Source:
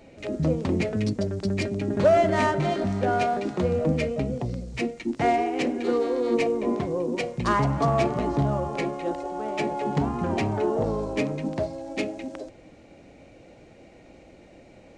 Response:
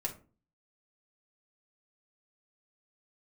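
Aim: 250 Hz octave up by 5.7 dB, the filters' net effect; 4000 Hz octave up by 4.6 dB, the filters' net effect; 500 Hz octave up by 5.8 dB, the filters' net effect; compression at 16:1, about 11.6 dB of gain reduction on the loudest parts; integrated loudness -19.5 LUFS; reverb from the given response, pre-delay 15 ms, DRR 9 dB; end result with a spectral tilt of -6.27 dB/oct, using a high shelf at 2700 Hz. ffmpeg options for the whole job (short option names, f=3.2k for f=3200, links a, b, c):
-filter_complex "[0:a]equalizer=f=250:t=o:g=5.5,equalizer=f=500:t=o:g=6,highshelf=f=2.7k:g=-3.5,equalizer=f=4k:t=o:g=9,acompressor=threshold=-20dB:ratio=16,asplit=2[a][b];[1:a]atrim=start_sample=2205,adelay=15[c];[b][c]afir=irnorm=-1:irlink=0,volume=-10.5dB[d];[a][d]amix=inputs=2:normalize=0,volume=5.5dB"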